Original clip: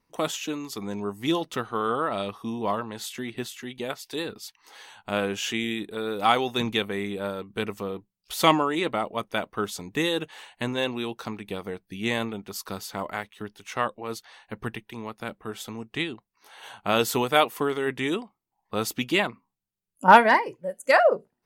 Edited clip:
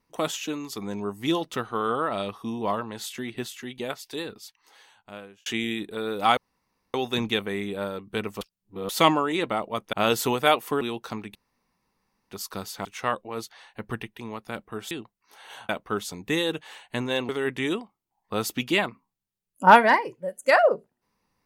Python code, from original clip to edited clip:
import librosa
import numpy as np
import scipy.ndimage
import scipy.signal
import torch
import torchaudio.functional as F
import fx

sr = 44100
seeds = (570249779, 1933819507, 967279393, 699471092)

y = fx.edit(x, sr, fx.fade_out_span(start_s=3.88, length_s=1.58),
    fx.insert_room_tone(at_s=6.37, length_s=0.57),
    fx.reverse_span(start_s=7.84, length_s=0.48),
    fx.swap(start_s=9.36, length_s=1.6, other_s=16.82, other_length_s=0.88),
    fx.room_tone_fill(start_s=11.5, length_s=0.96),
    fx.cut(start_s=13.0, length_s=0.58),
    fx.cut(start_s=15.64, length_s=0.4), tone=tone)